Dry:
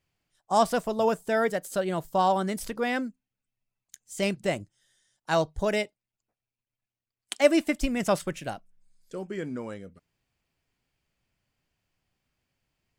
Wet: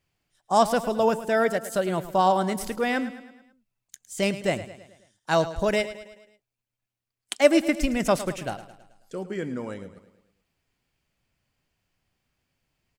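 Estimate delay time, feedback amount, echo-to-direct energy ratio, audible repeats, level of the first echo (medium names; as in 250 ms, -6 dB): 108 ms, 51%, -12.5 dB, 4, -14.0 dB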